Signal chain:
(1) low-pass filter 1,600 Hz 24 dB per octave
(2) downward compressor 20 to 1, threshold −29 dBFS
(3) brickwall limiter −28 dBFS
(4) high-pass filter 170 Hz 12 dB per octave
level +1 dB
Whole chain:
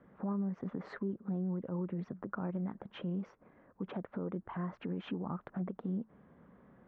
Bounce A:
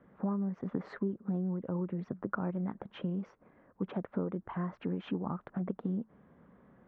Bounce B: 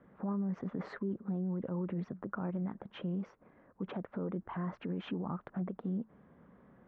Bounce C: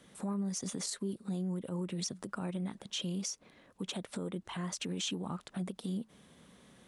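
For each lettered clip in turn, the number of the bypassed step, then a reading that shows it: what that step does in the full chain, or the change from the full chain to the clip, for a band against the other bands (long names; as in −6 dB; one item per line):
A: 3, change in crest factor +3.0 dB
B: 2, average gain reduction 4.0 dB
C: 1, 4 kHz band +18.0 dB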